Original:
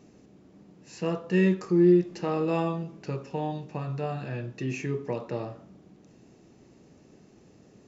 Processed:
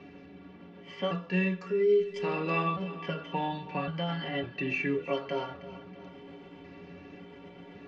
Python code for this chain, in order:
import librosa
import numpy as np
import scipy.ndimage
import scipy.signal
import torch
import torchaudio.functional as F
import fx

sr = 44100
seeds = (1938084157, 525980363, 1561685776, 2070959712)

y = fx.pitch_trill(x, sr, semitones=2.5, every_ms=553)
y = fx.stiff_resonator(y, sr, f0_hz=84.0, decay_s=0.24, stiffness=0.03)
y = fx.env_lowpass(y, sr, base_hz=2700.0, full_db=-28.5)
y = fx.peak_eq(y, sr, hz=2800.0, db=10.5, octaves=2.3)
y = fx.echo_feedback(y, sr, ms=321, feedback_pct=37, wet_db=-18.0)
y = fx.rider(y, sr, range_db=4, speed_s=0.5)
y = scipy.signal.sosfilt(scipy.signal.butter(2, 4000.0, 'lowpass', fs=sr, output='sos'), y)
y = fx.band_squash(y, sr, depth_pct=40)
y = y * librosa.db_to_amplitude(2.5)